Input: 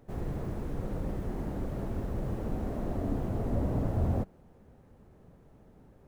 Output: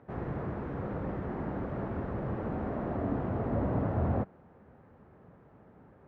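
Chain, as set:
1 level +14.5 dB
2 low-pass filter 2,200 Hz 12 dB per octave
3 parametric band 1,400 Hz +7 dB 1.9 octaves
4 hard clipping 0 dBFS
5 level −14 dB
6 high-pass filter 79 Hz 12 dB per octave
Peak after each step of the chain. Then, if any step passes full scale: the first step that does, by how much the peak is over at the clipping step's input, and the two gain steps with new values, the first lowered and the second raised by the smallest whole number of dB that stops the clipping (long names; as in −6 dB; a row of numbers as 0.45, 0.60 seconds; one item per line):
−3.5, −3.5, −3.0, −3.0, −17.0, −18.5 dBFS
no step passes full scale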